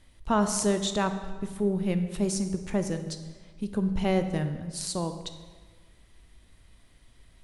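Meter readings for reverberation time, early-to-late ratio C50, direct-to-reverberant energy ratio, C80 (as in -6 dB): 1.5 s, 9.5 dB, 8.0 dB, 11.0 dB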